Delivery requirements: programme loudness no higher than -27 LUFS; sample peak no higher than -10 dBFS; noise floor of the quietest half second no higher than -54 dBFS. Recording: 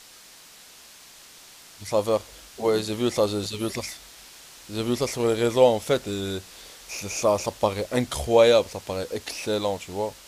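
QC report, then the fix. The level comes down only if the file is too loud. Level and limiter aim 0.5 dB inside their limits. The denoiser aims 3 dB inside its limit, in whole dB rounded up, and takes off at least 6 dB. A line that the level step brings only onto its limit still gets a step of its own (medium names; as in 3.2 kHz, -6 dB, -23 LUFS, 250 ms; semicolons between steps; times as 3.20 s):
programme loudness -24.5 LUFS: fail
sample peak -5.5 dBFS: fail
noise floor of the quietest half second -49 dBFS: fail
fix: noise reduction 6 dB, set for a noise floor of -49 dBFS; trim -3 dB; peak limiter -10.5 dBFS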